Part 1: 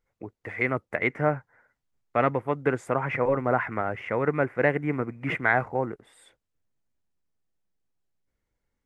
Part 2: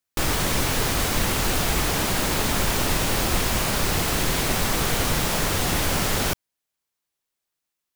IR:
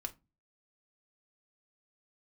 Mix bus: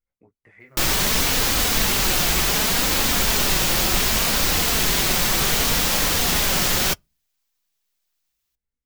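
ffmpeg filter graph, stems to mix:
-filter_complex "[0:a]lowshelf=f=240:g=11,acompressor=threshold=-30dB:ratio=4,flanger=delay=16.5:depth=5.2:speed=0.46,volume=-11.5dB[a];[1:a]equalizer=f=9.7k:w=1.5:g=-5,adelay=600,volume=2.5dB,asplit=2[b][c];[c]volume=-22dB[d];[2:a]atrim=start_sample=2205[e];[d][e]afir=irnorm=-1:irlink=0[f];[a][b][f]amix=inputs=3:normalize=0,highshelf=f=2.2k:g=9.5,flanger=delay=3.6:depth=2.2:regen=-43:speed=0.67:shape=triangular"

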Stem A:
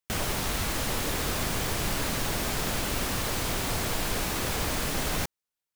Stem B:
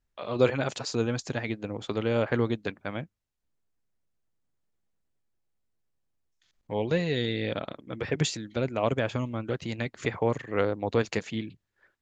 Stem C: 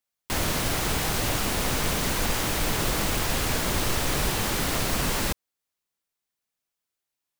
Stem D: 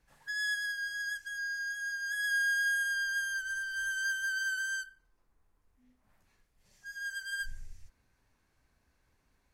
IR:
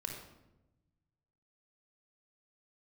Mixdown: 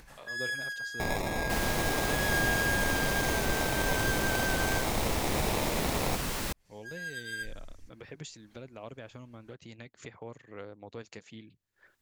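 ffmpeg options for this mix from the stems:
-filter_complex "[0:a]equalizer=f=670:w=1.1:g=7.5,acrusher=samples=29:mix=1:aa=0.000001,adelay=900,volume=-4.5dB[a];[1:a]highshelf=f=5.4k:g=8,volume=-18.5dB[b];[2:a]adelay=1200,volume=-7.5dB[c];[3:a]volume=-1.5dB[d];[a][b][c][d]amix=inputs=4:normalize=0,acompressor=mode=upward:threshold=-40dB:ratio=2.5"

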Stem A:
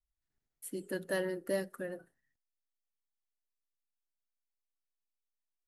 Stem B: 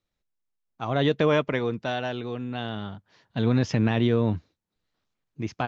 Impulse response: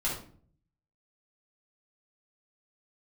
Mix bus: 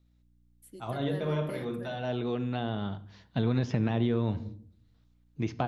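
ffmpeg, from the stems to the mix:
-filter_complex "[0:a]dynaudnorm=f=100:g=11:m=8dB,aeval=exprs='val(0)+0.00355*(sin(2*PI*60*n/s)+sin(2*PI*2*60*n/s)/2+sin(2*PI*3*60*n/s)/3+sin(2*PI*4*60*n/s)/4+sin(2*PI*5*60*n/s)/5)':c=same,volume=-15.5dB,asplit=2[a][b];[1:a]volume=0dB,asplit=2[c][d];[d]volume=-18dB[e];[b]apad=whole_len=250196[f];[c][f]sidechaincompress=threshold=-59dB:ratio=8:attack=16:release=192[g];[2:a]atrim=start_sample=2205[h];[e][h]afir=irnorm=-1:irlink=0[i];[a][g][i]amix=inputs=3:normalize=0,acrossover=split=1000|2900[j][k][l];[j]acompressor=threshold=-24dB:ratio=4[m];[k]acompressor=threshold=-46dB:ratio=4[n];[l]acompressor=threshold=-53dB:ratio=4[o];[m][n][o]amix=inputs=3:normalize=0,equalizer=f=3.7k:w=3.7:g=3.5"

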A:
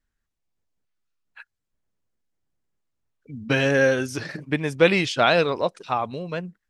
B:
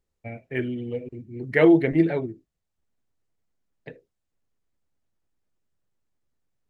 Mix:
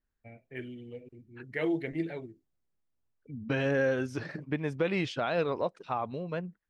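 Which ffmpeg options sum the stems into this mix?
-filter_complex "[0:a]lowpass=f=1.7k:p=1,volume=-4.5dB[a];[1:a]adynamicequalizer=threshold=0.0112:dfrequency=1900:dqfactor=0.7:tfrequency=1900:tqfactor=0.7:attack=5:release=100:ratio=0.375:range=3.5:mode=boostabove:tftype=highshelf,volume=-13.5dB[b];[a][b]amix=inputs=2:normalize=0,alimiter=limit=-19dB:level=0:latency=1:release=205"

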